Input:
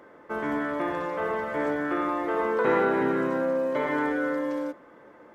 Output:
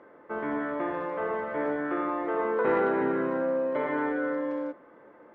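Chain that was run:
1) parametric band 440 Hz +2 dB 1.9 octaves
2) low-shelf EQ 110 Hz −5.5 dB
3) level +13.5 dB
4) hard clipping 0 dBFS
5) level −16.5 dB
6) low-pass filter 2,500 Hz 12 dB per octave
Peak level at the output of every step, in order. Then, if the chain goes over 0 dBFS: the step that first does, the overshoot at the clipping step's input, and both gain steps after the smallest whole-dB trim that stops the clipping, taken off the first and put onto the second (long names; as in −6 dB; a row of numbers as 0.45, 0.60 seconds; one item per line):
−10.0, −10.0, +3.5, 0.0, −16.5, −16.0 dBFS
step 3, 3.5 dB
step 3 +9.5 dB, step 5 −12.5 dB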